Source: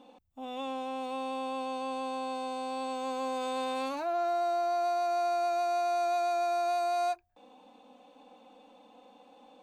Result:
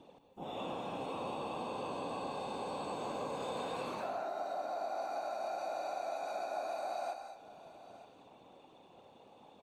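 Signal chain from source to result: whisper effect; on a send: delay 917 ms -23.5 dB; on the sum: compression, threshold -33 dBFS, peak gain reduction 9 dB; gated-style reverb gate 250 ms rising, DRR 6.5 dB; trim -3.5 dB

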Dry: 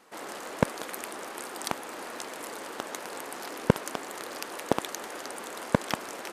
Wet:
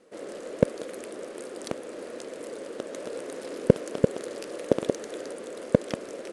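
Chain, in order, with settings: 2.75–5.33 s: chunks repeated in reverse 187 ms, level -4 dB; steep low-pass 11 kHz 72 dB/octave; resonant low shelf 670 Hz +7.5 dB, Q 3; trim -6 dB

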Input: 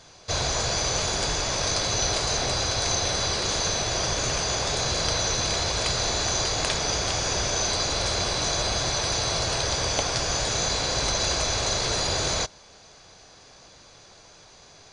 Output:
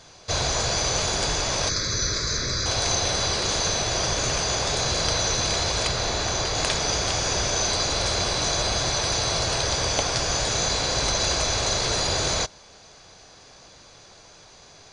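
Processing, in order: 1.69–2.66 s: static phaser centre 2.9 kHz, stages 6; 5.87–6.55 s: treble shelf 5.7 kHz -7 dB; trim +1.5 dB

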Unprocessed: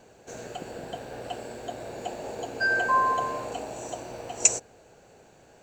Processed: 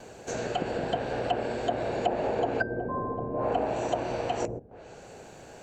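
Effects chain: low-pass that closes with the level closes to 320 Hz, closed at -25.5 dBFS; gate with hold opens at -50 dBFS; trim +8 dB

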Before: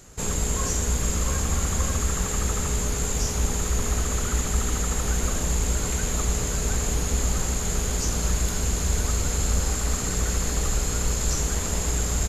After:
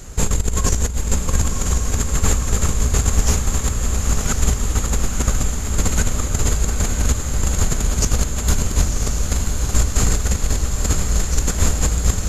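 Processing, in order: bass shelf 81 Hz +11 dB; compressor with a negative ratio -21 dBFS, ratio -0.5; on a send: echo that smears into a reverb 1018 ms, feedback 62%, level -4.5 dB; on the sum: trim +3.5 dB

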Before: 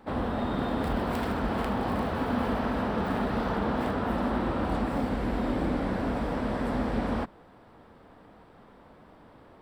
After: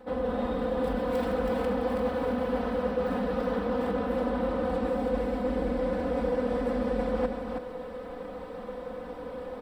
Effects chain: peaking EQ 510 Hz +14 dB 0.22 oct; comb 4 ms, depth 97%; reverse; compression 6:1, threshold -34 dBFS, peak gain reduction 18 dB; reverse; delay 324 ms -5 dB; trim +6 dB

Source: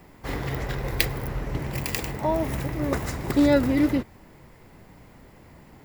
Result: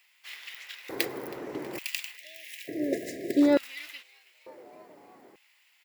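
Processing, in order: frequency-shifting echo 321 ms, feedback 60%, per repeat +110 Hz, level -22 dB; LFO high-pass square 0.56 Hz 340–2700 Hz; spectral selection erased 2.17–3.42 s, 720–1600 Hz; trim -6 dB

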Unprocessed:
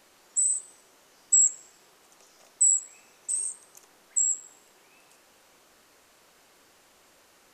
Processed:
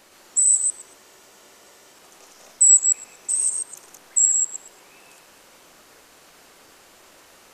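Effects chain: chunks repeated in reverse 117 ms, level -1 dB; spectral freeze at 0.99 s, 0.95 s; trim +6 dB

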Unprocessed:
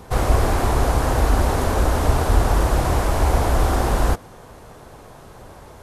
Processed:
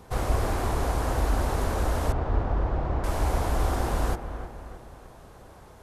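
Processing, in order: 2.12–3.04 s: tape spacing loss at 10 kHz 36 dB; on a send: feedback echo behind a low-pass 311 ms, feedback 48%, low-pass 2.4 kHz, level -10 dB; on the sum: trim -8 dB

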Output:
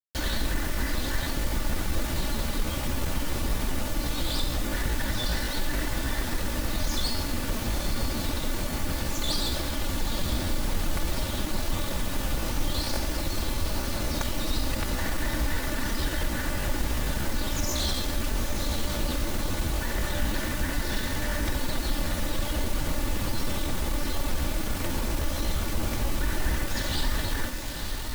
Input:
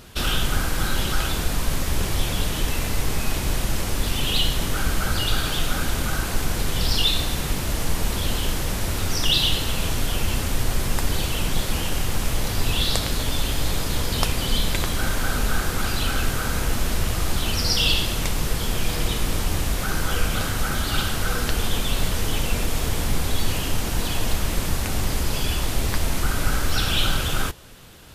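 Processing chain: comb filter that takes the minimum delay 4.2 ms; treble shelf 2.3 kHz -7 dB; on a send: echo that smears into a reverb 907 ms, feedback 53%, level -8.5 dB; on the sum: pitch shift +3.5 st; in parallel at +1 dB: peak limiter -18.5 dBFS, peak gain reduction 10 dB; on the sum: bit crusher 5-bit; trim -8 dB

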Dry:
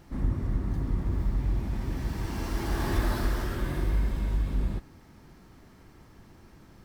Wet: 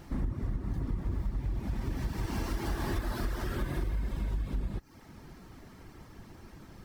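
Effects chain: reverb removal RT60 0.51 s; compression, threshold -33 dBFS, peak gain reduction 12.5 dB; trim +4 dB

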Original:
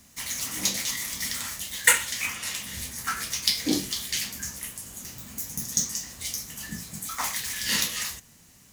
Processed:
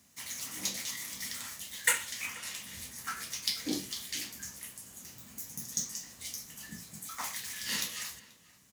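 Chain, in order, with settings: high-pass 58 Hz; bass shelf 76 Hz -6.5 dB; echo from a far wall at 83 m, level -19 dB; trim -8.5 dB

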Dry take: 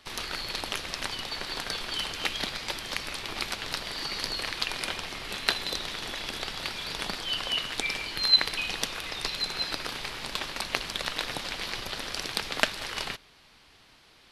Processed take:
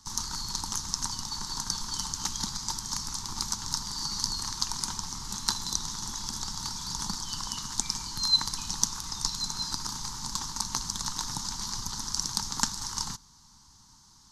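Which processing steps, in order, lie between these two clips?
FFT filter 210 Hz 0 dB, 620 Hz -30 dB, 910 Hz 0 dB, 2.5 kHz -27 dB, 6.4 kHz +10 dB, 9.9 kHz -4 dB; trim +4.5 dB

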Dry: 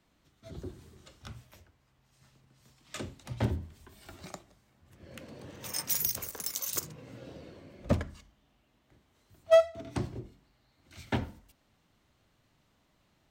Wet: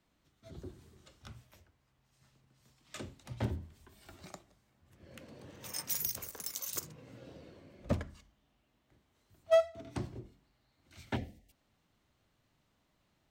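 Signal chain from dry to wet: time-frequency box 11.16–11.51 s, 820–1700 Hz -18 dB; trim -5 dB

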